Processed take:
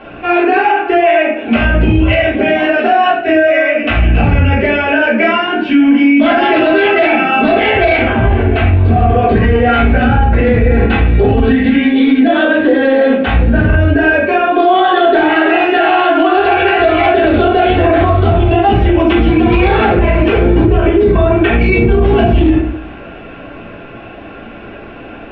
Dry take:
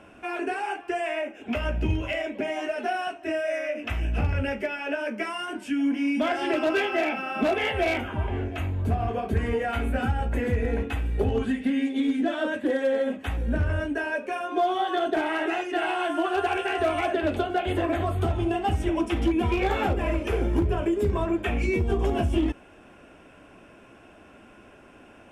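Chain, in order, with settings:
elliptic low-pass filter 4,100 Hz, stop band 70 dB
convolution reverb RT60 0.55 s, pre-delay 3 ms, DRR −6.5 dB
boost into a limiter +13.5 dB
level −1 dB

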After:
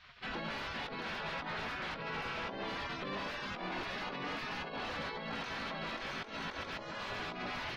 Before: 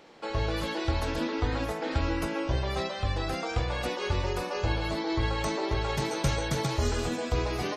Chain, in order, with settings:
gate on every frequency bin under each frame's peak −15 dB weak
compressor whose output falls as the input rises −41 dBFS, ratio −0.5
wave folding −38.5 dBFS
high-frequency loss of the air 290 metres
level +7.5 dB

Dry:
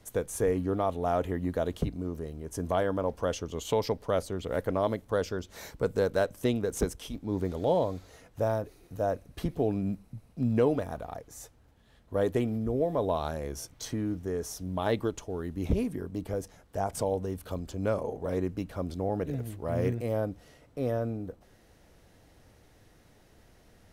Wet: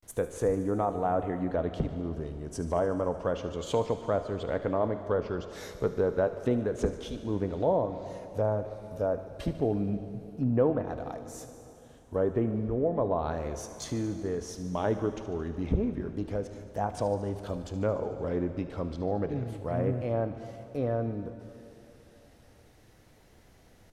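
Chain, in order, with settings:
treble cut that deepens with the level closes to 1,300 Hz, closed at −23.5 dBFS
pitch vibrato 0.31 Hz 82 cents
delay with a high-pass on its return 74 ms, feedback 74%, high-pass 2,000 Hz, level −14 dB
dense smooth reverb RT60 3.2 s, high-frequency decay 0.75×, DRR 9.5 dB

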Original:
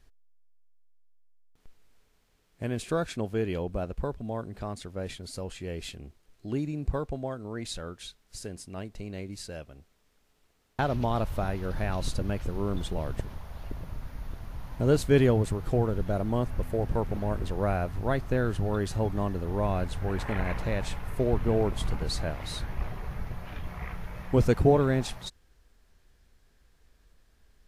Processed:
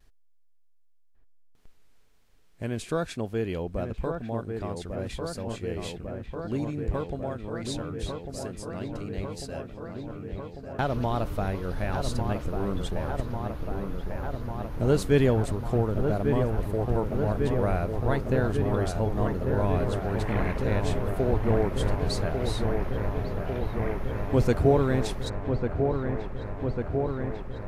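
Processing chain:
pitch vibrato 1 Hz 35 cents
delay with a low-pass on its return 1,147 ms, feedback 80%, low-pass 1,900 Hz, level −5.5 dB

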